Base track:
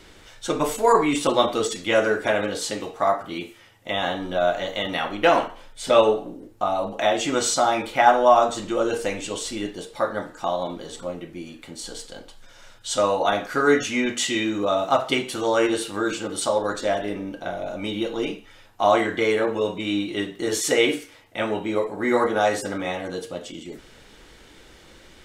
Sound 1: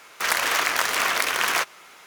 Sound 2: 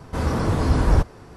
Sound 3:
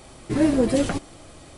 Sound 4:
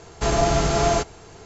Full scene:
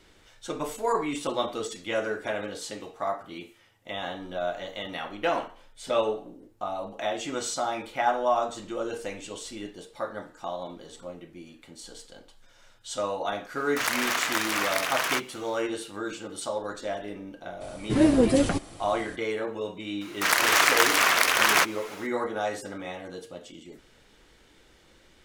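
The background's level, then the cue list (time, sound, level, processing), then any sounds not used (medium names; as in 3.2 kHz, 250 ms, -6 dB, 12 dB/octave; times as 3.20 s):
base track -9 dB
13.56 s: add 1 -5 dB
17.60 s: add 3 -0.5 dB, fades 0.02 s
20.01 s: add 1 -0.5 dB + level rider
not used: 2, 4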